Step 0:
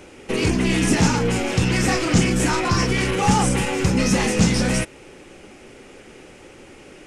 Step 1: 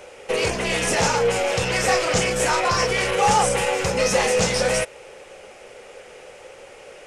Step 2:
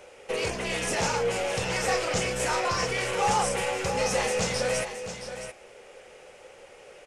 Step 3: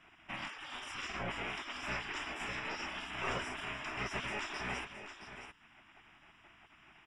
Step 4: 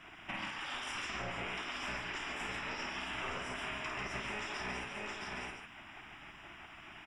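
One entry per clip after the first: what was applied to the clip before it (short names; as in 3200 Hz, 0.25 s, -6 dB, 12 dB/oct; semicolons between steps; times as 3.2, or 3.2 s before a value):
resonant low shelf 390 Hz -9 dB, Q 3; gain +1 dB
echo 0.669 s -10 dB; gain -7 dB
polynomial smoothing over 25 samples; spectral gate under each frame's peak -15 dB weak; gain -3.5 dB
compressor 6:1, threshold -47 dBFS, peak gain reduction 13.5 dB; loudspeakers at several distances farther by 18 m -6 dB, 49 m -6 dB; gain +7.5 dB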